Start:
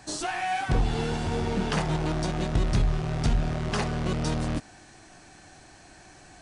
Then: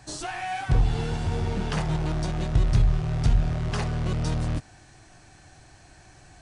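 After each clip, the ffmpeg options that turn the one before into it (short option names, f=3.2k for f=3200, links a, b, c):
-af "lowshelf=f=160:t=q:w=1.5:g=6,volume=-2.5dB"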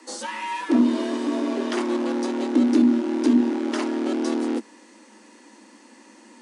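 -af "afreqshift=200,volume=1.5dB"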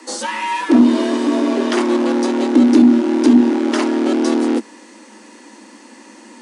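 -af "acontrast=49,volume=2.5dB"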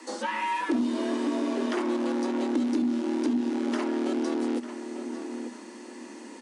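-filter_complex "[0:a]asplit=2[a][b];[b]adelay=895,lowpass=f=2k:p=1,volume=-15dB,asplit=2[c][d];[d]adelay=895,lowpass=f=2k:p=1,volume=0.35,asplit=2[e][f];[f]adelay=895,lowpass=f=2k:p=1,volume=0.35[g];[a][c][e][g]amix=inputs=4:normalize=0,acrossover=split=2800|6500[h][i][j];[h]acompressor=threshold=-20dB:ratio=4[k];[i]acompressor=threshold=-44dB:ratio=4[l];[j]acompressor=threshold=-49dB:ratio=4[m];[k][l][m]amix=inputs=3:normalize=0,volume=-5.5dB"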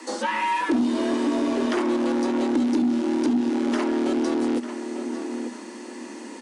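-af "asoftclip=type=tanh:threshold=-18.5dB,volume=5.5dB"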